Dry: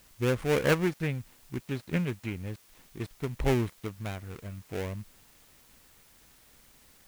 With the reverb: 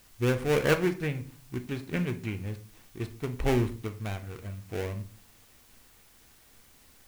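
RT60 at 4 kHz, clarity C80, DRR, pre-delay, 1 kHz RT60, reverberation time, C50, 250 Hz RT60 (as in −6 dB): 0.30 s, 19.5 dB, 7.5 dB, 3 ms, 0.40 s, 0.40 s, 14.0 dB, 0.65 s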